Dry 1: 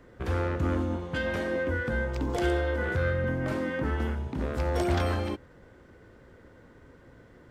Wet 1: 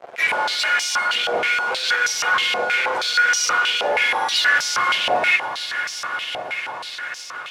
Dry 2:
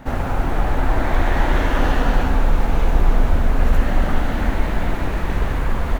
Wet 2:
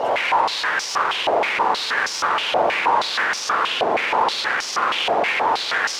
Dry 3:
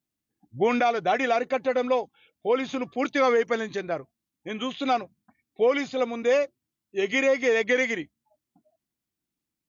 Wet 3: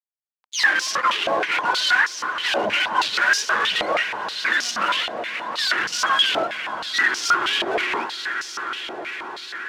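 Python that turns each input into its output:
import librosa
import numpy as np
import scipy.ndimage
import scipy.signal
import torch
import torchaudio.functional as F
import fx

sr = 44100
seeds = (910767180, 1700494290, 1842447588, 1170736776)

y = fx.octave_mirror(x, sr, pivot_hz=870.0)
y = fx.notch(y, sr, hz=1300.0, q=30.0)
y = fx.env_lowpass_down(y, sr, base_hz=1600.0, full_db=-22.5)
y = fx.high_shelf(y, sr, hz=3500.0, db=-4.0)
y = fx.fuzz(y, sr, gain_db=50.0, gate_db=-57.0)
y = fx.echo_swell(y, sr, ms=177, loudest=5, wet_db=-15.0)
y = fx.filter_held_bandpass(y, sr, hz=6.3, low_hz=690.0, high_hz=5500.0)
y = y * librosa.db_to_amplitude(3.5)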